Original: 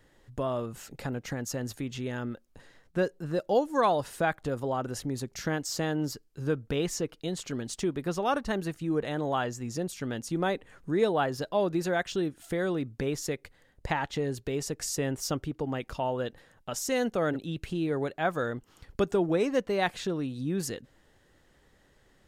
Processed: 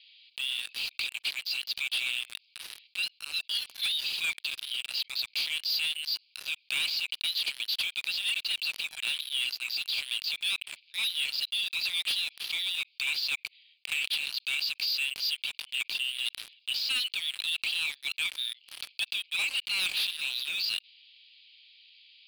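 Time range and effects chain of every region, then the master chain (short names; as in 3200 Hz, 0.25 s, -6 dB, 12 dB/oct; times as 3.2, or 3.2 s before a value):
13.35–13.92 high shelf 2900 Hz -11.5 dB + compressor 3:1, threshold -42 dBFS
whole clip: Chebyshev band-pass 2300–4800 Hz, order 5; sample leveller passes 5; fast leveller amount 50%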